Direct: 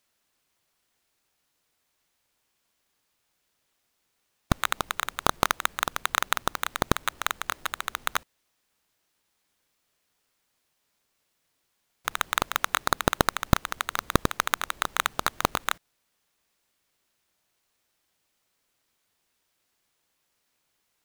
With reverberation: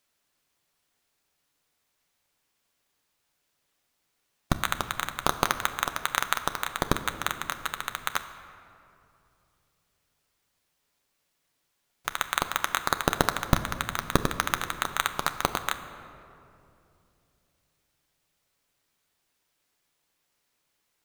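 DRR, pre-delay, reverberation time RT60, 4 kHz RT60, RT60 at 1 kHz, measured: 8.0 dB, 7 ms, 2.8 s, 1.5 s, 2.5 s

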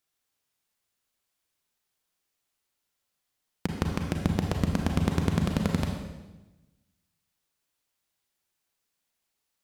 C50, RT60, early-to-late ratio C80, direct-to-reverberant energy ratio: 3.5 dB, 1.1 s, 5.5 dB, 2.0 dB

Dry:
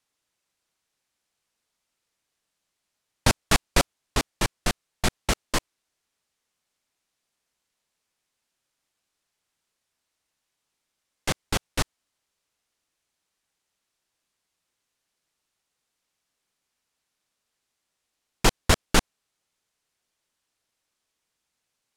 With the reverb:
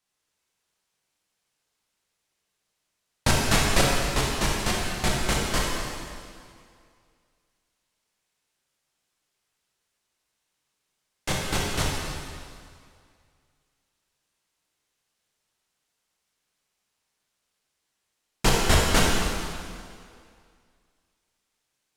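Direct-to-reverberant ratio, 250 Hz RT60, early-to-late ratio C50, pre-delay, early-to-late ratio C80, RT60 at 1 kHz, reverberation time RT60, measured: -4.0 dB, 2.2 s, -1.0 dB, 11 ms, 0.5 dB, 2.2 s, 2.2 s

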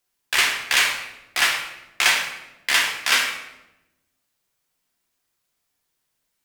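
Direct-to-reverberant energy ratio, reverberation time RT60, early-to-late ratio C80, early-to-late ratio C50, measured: -1.0 dB, 0.95 s, 7.5 dB, 4.5 dB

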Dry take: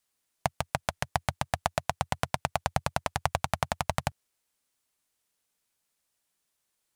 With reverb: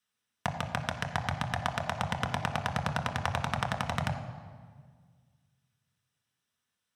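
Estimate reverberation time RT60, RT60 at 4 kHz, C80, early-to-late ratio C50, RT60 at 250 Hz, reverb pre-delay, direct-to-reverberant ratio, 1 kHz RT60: 1.7 s, 1.2 s, 10.0 dB, 9.0 dB, 2.2 s, 3 ms, 3.5 dB, 1.6 s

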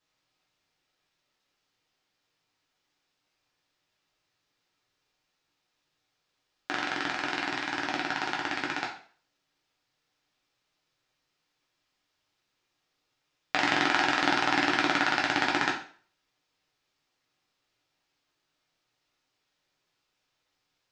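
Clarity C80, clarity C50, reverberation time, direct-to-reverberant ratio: 11.0 dB, 6.5 dB, 0.45 s, -3.0 dB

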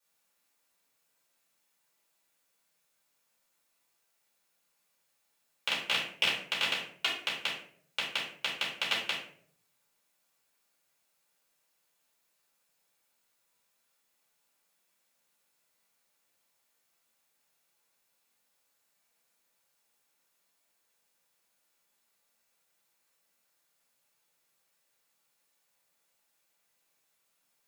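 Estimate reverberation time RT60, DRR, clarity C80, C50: 0.60 s, -7.0 dB, 9.0 dB, 4.5 dB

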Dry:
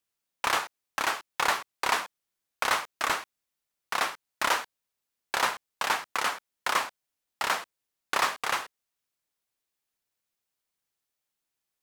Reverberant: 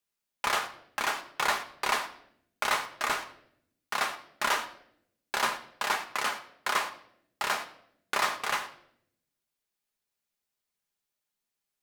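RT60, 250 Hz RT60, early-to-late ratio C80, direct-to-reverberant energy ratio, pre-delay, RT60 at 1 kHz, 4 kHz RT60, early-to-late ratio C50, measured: 0.70 s, 1.1 s, 14.5 dB, 5.0 dB, 5 ms, 0.55 s, 0.60 s, 13.5 dB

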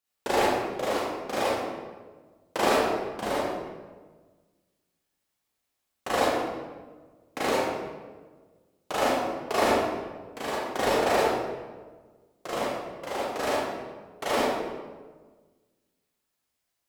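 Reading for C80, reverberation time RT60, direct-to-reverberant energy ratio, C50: -0.5 dB, 1.4 s, -9.0 dB, -3.5 dB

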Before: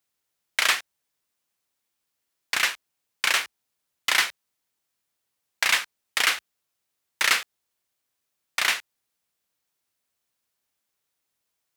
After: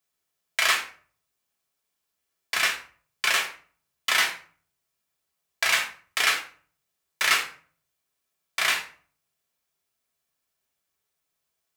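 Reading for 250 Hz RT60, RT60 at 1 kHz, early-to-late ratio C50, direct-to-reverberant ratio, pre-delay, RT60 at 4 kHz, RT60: 0.55 s, 0.45 s, 9.5 dB, -0.5 dB, 3 ms, 0.30 s, 0.45 s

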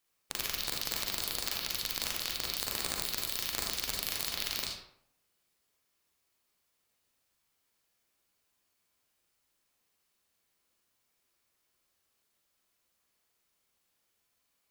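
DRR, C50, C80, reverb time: -2.0 dB, 1.0 dB, 5.0 dB, 0.70 s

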